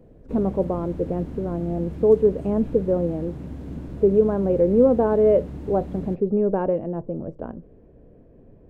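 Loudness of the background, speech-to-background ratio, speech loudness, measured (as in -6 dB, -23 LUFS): -36.0 LUFS, 14.0 dB, -22.0 LUFS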